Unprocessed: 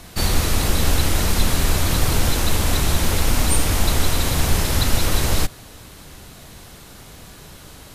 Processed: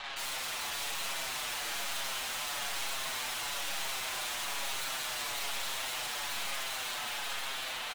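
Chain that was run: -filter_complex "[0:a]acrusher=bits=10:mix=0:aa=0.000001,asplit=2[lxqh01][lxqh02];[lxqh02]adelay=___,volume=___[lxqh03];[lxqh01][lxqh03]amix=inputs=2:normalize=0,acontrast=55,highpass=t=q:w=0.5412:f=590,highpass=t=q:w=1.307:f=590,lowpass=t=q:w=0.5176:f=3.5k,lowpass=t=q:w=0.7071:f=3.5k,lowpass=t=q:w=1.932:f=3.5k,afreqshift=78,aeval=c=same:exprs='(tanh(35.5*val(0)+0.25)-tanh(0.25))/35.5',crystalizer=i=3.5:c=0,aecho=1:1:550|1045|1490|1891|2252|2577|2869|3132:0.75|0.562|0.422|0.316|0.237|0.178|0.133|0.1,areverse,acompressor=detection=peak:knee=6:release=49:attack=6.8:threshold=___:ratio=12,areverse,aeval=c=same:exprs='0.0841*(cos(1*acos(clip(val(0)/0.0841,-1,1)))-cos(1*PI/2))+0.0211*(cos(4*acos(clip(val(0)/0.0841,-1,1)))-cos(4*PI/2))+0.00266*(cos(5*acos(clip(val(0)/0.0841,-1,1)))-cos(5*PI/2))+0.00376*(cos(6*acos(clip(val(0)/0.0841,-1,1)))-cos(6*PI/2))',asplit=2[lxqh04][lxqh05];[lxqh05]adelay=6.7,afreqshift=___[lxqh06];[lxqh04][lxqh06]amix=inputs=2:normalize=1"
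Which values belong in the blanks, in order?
39, 0.562, 0.02, -1.1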